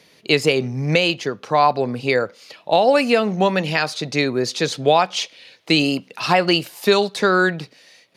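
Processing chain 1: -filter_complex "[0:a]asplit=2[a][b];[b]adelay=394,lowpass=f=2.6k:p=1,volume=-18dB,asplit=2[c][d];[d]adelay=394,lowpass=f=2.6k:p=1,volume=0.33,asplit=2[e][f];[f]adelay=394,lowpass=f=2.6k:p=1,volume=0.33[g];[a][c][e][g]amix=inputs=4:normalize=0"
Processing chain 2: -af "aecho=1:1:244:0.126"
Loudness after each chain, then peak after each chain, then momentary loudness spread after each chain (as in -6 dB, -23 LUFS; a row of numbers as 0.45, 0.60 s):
-18.5, -18.5 LUFS; -3.0, -3.5 dBFS; 9, 7 LU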